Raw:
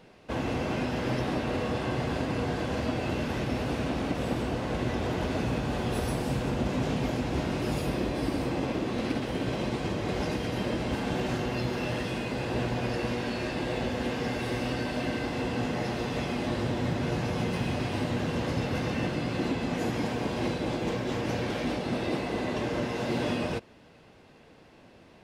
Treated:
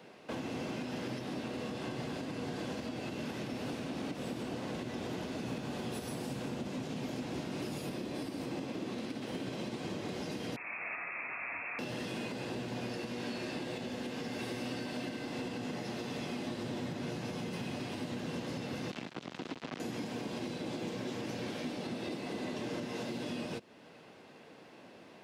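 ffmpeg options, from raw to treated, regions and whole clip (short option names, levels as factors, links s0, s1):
-filter_complex "[0:a]asettb=1/sr,asplit=3[s0][s1][s2];[s0]atrim=end=10.564[s3];[s1]atrim=start=10.56:end=11.79,asetpts=PTS-STARTPTS,afade=t=in:d=0.004:c=qsin,afade=t=out:st=1.226:d=0.004:c=qsin,highpass=f=1000:p=1,lowpass=f=2400:t=q:w=0.5098,lowpass=f=2400:t=q:w=0.6013,lowpass=f=2400:t=q:w=0.9,lowpass=f=2400:t=q:w=2.563,afreqshift=-2800[s4];[s2]atrim=start=11.786[s5];[s3][s4]acrossfade=d=0.004:c1=hsin:c2=qsin[s6];[s6][s5]acrossfade=d=0.004:c1=qsin:c2=hsin,asettb=1/sr,asplit=3[s7][s8][s9];[s7]atrim=end=18.914[s10];[s8]atrim=start=18.91:end=19.8,asetpts=PTS-STARTPTS,afade=t=in:d=0.004:c=qsin,afade=t=out:st=0.886:d=0.004:c=qsin,lowpass=3500,acrusher=bits=3:mix=0:aa=0.5[s11];[s9]atrim=start=19.796[s12];[s10][s11]acrossfade=d=0.004:c1=hsin:c2=qsin[s13];[s13][s12]acrossfade=d=0.004:c1=qsin:c2=hsin,highpass=180,acrossover=split=320|3000[s14][s15][s16];[s15]acompressor=threshold=0.0126:ratio=6[s17];[s14][s17][s16]amix=inputs=3:normalize=0,alimiter=level_in=2.11:limit=0.0631:level=0:latency=1:release=323,volume=0.473,volume=1.12"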